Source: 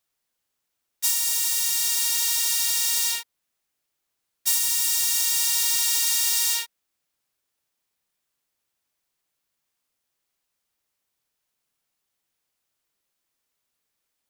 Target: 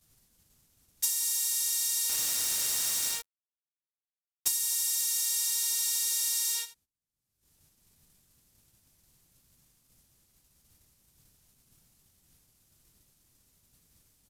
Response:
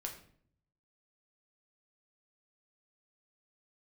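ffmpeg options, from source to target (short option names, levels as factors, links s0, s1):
-filter_complex "[0:a]acompressor=mode=upward:threshold=0.00447:ratio=2.5,bass=f=250:g=14,treble=f=4000:g=9,acompressor=threshold=0.126:ratio=16,lowshelf=f=440:g=9.5,aecho=1:1:81:0.188,agate=range=0.126:threshold=0.00251:ratio=16:detection=peak,aresample=32000,aresample=44100,asettb=1/sr,asplit=3[s0][s1][s2];[s0]atrim=end=2.094[s3];[s1]atrim=start=2.09:end=4.48,asetpts=PTS-STARTPTS,afade=t=in:d=0.004:c=qsin,afade=t=out:st=2.386:d=0.004:c=qsin,acrusher=bits=3:mix=0:aa=0.5[s4];[s2]atrim=start=4.476[s5];[s3][s4]acrossfade=d=0.004:c1=hsin:c2=qsin[s6];[s6][s5]acrossfade=d=0.004:c1=qsin:c2=hsin,volume=0.531"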